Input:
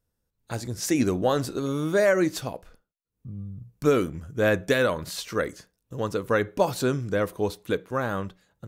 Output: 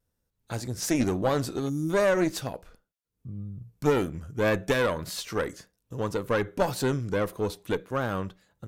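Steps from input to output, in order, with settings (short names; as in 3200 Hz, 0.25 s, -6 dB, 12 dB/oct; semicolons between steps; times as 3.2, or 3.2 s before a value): one diode to ground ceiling -22.5 dBFS; vibrato 1.8 Hz 42 cents; spectral gain 1.69–1.9, 360–4800 Hz -21 dB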